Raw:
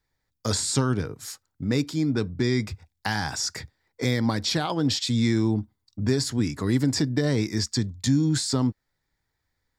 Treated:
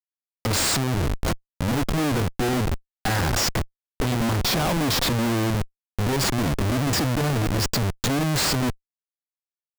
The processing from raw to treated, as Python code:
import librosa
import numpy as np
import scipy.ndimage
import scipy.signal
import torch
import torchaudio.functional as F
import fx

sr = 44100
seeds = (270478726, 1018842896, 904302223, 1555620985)

y = fx.schmitt(x, sr, flips_db=-30.5)
y = F.gain(torch.from_numpy(y), 4.0).numpy()